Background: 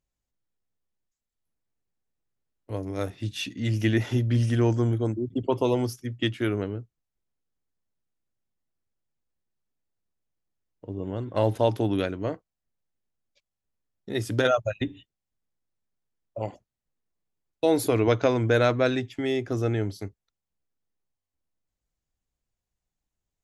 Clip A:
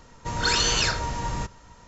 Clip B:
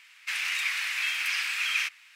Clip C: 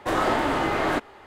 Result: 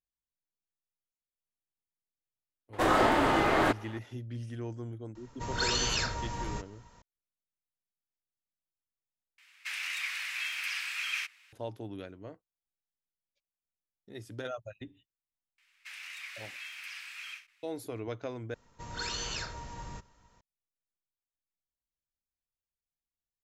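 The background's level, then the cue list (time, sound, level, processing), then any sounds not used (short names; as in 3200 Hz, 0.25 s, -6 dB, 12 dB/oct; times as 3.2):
background -16.5 dB
2.73 add C -1.5 dB
5.15 add A -7.5 dB
9.38 replace with B -6.5 dB
15.58 add B -15 dB + ending taper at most 180 dB/s
18.54 replace with A -14 dB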